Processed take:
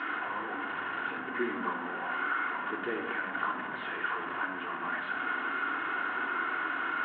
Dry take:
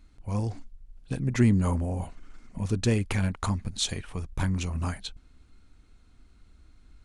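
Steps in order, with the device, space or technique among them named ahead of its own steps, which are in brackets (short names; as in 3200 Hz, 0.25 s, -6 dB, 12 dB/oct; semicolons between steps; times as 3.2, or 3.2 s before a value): 0.51–2.59 notch 630 Hz, Q 12; dynamic EQ 270 Hz, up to +7 dB, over -39 dBFS, Q 0.73; digital answering machine (BPF 400–3400 Hz; delta modulation 16 kbps, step -26.5 dBFS; speaker cabinet 380–3700 Hz, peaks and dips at 420 Hz -4 dB, 660 Hz -6 dB, 980 Hz +5 dB, 1500 Hz +10 dB, 2400 Hz -8 dB, 3500 Hz -4 dB); shoebox room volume 3000 m³, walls furnished, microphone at 3.3 m; gain -5.5 dB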